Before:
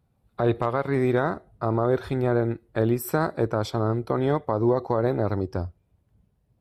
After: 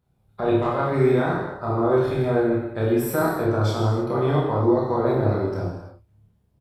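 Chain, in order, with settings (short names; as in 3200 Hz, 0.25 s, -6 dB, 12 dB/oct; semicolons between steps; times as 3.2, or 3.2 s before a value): doubler 29 ms -3 dB; non-linear reverb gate 0.36 s falling, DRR -3.5 dB; gain -4.5 dB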